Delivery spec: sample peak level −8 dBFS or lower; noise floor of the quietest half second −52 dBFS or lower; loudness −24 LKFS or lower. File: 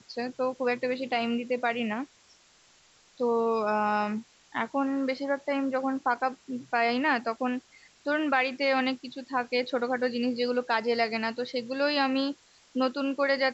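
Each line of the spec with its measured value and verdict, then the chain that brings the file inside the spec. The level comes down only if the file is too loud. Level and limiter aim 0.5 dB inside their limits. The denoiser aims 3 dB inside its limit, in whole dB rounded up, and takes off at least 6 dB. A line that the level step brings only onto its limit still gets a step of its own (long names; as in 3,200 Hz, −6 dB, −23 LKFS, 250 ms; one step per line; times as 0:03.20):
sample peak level −12.0 dBFS: in spec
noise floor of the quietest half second −61 dBFS: in spec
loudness −28.5 LKFS: in spec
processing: no processing needed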